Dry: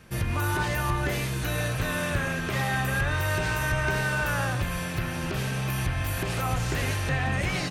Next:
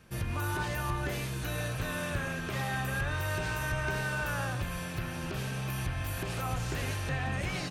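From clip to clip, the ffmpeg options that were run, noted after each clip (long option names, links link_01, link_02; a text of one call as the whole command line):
ffmpeg -i in.wav -af "equalizer=frequency=2000:width=7.6:gain=-3.5,volume=-6dB" out.wav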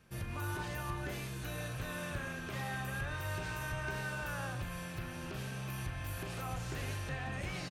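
ffmpeg -i in.wav -filter_complex "[0:a]asplit=2[link_01][link_02];[link_02]adelay=40,volume=-12dB[link_03];[link_01][link_03]amix=inputs=2:normalize=0,volume=-6.5dB" out.wav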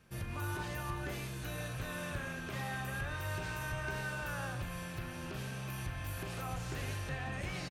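ffmpeg -i in.wav -af "aecho=1:1:210:0.119" out.wav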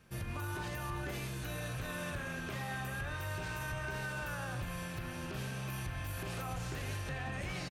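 ffmpeg -i in.wav -af "alimiter=level_in=8.5dB:limit=-24dB:level=0:latency=1:release=39,volume=-8.5dB,volume=1.5dB" out.wav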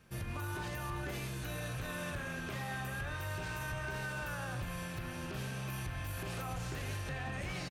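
ffmpeg -i in.wav -af "asoftclip=type=hard:threshold=-33dB" out.wav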